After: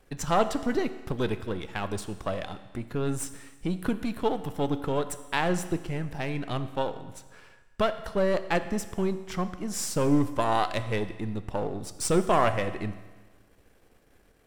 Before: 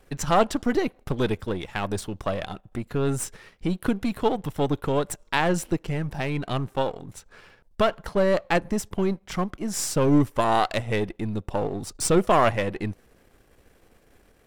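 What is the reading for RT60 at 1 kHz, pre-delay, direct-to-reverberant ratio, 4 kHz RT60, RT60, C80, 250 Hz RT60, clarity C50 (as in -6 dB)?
1.3 s, 11 ms, 10.5 dB, 1.3 s, 1.3 s, 14.0 dB, 1.3 s, 12.5 dB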